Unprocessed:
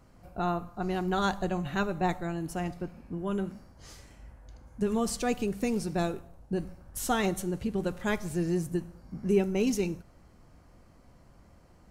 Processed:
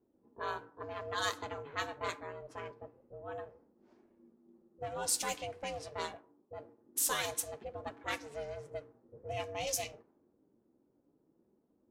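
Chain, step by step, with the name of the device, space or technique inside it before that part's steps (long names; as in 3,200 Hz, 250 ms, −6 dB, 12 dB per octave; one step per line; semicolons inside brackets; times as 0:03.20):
alien voice (ring modulation 290 Hz; flanger 0.25 Hz, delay 2.7 ms, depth 9.7 ms, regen −50%)
spectral tilt +4 dB per octave
low-pass that shuts in the quiet parts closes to 350 Hz, open at −30.5 dBFS
0:06.16–0:06.84: low-shelf EQ 280 Hz −6 dB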